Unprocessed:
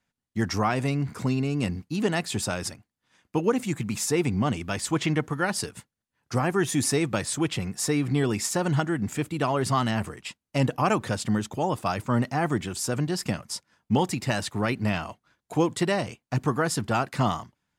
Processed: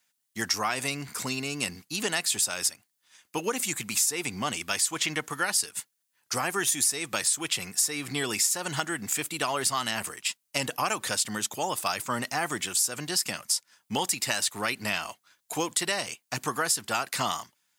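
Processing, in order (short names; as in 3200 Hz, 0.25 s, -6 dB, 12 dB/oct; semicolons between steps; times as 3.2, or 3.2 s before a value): tilt +4.5 dB/oct; compressor 5:1, threshold -23 dBFS, peak gain reduction 12 dB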